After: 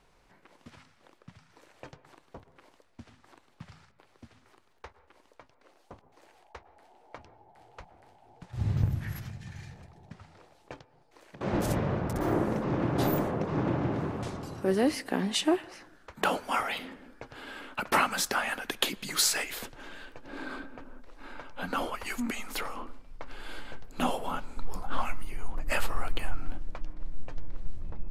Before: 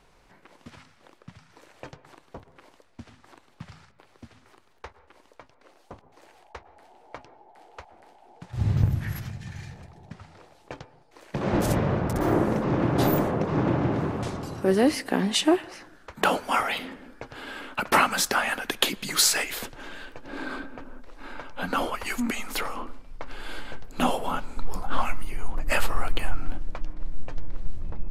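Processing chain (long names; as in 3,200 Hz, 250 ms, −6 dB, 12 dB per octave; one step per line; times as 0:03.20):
0:07.16–0:08.43: sub-octave generator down 2 octaves, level +1 dB
0:10.80–0:11.41: downward compressor 4 to 1, threshold −46 dBFS, peak gain reduction 17 dB
level −5 dB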